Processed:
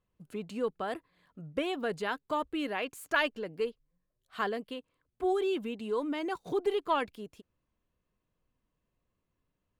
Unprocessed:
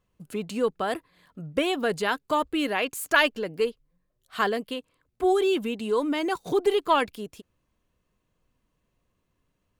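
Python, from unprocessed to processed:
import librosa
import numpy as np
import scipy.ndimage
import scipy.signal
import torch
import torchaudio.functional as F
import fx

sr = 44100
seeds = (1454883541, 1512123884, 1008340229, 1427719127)

y = fx.high_shelf(x, sr, hz=4700.0, db=-7.5)
y = y * librosa.db_to_amplitude(-7.0)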